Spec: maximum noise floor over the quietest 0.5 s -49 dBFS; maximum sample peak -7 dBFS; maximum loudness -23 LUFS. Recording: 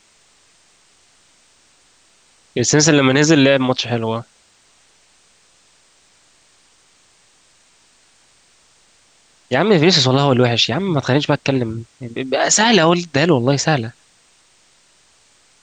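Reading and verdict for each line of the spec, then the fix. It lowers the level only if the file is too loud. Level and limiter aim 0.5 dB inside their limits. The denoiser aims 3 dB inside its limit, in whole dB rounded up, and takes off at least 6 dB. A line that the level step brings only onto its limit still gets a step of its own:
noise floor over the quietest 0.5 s -55 dBFS: OK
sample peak -2.0 dBFS: fail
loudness -15.0 LUFS: fail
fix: gain -8.5 dB

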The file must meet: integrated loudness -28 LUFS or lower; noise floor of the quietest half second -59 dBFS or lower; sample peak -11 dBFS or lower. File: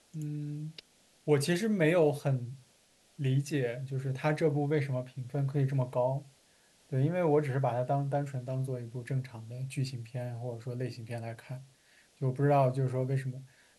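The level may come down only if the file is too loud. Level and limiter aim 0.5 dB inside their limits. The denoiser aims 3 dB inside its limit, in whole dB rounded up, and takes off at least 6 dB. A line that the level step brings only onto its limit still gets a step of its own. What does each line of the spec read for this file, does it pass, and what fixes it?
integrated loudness -32.0 LUFS: OK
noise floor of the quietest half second -66 dBFS: OK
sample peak -13.5 dBFS: OK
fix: none

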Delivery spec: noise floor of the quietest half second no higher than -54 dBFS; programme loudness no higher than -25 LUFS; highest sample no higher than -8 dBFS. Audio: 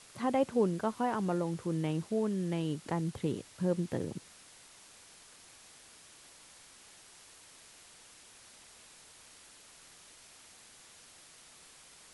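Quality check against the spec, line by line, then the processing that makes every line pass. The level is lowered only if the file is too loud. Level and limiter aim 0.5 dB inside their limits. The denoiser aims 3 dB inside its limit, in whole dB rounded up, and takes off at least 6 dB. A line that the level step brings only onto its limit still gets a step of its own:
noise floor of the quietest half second -57 dBFS: OK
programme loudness -33.5 LUFS: OK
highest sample -17.5 dBFS: OK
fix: none

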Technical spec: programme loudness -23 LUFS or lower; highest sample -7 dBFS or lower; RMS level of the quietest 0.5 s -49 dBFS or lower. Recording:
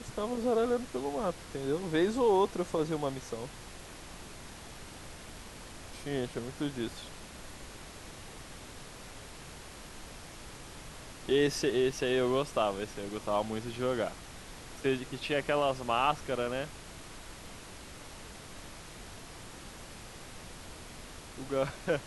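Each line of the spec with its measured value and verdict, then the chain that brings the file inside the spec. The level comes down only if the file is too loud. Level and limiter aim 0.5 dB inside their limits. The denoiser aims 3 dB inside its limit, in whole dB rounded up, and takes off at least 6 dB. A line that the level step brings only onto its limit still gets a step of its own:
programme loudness -32.0 LUFS: OK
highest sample -15.0 dBFS: OK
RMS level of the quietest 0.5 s -47 dBFS: fail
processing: denoiser 6 dB, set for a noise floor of -47 dBFS

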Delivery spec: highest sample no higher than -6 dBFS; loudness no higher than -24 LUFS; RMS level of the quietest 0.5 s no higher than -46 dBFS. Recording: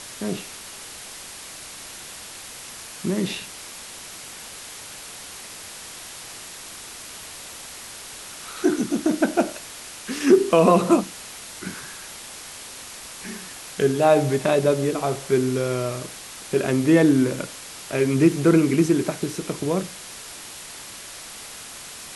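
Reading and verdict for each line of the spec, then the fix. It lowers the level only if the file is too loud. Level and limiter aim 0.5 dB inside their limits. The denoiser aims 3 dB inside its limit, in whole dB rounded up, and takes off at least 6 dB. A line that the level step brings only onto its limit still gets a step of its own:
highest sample -5.0 dBFS: fail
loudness -21.5 LUFS: fail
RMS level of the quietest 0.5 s -39 dBFS: fail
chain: denoiser 7 dB, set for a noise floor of -39 dBFS; gain -3 dB

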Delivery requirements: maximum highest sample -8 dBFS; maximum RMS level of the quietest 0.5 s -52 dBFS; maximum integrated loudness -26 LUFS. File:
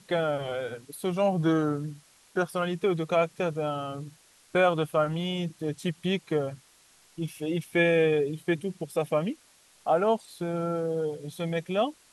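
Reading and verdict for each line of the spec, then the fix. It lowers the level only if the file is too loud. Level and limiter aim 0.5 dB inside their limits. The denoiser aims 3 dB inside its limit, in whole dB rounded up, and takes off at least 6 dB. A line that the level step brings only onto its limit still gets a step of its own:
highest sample -11.5 dBFS: OK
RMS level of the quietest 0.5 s -60 dBFS: OK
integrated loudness -28.5 LUFS: OK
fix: none

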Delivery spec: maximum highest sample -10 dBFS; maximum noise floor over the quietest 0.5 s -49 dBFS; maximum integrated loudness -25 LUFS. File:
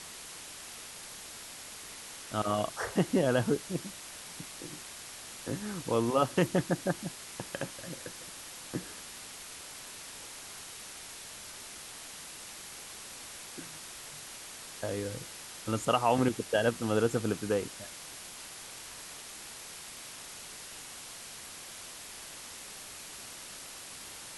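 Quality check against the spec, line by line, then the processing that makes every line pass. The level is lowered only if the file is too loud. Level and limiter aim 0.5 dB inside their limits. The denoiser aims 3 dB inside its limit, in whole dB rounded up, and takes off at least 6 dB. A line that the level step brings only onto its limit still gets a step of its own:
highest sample -12.5 dBFS: OK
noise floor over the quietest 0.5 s -46 dBFS: fail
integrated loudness -36.0 LUFS: OK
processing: denoiser 6 dB, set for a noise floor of -46 dBFS

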